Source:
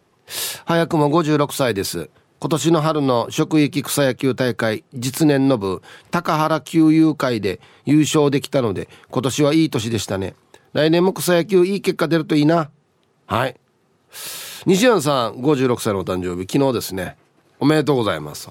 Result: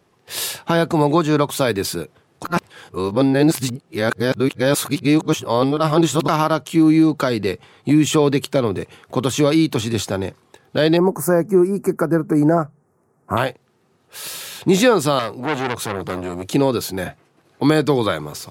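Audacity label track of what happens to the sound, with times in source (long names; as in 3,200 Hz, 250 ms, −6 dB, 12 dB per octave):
2.440000	6.280000	reverse
10.970000	13.370000	Butterworth band-reject 3,400 Hz, Q 0.57
15.190000	16.470000	saturating transformer saturates under 1,800 Hz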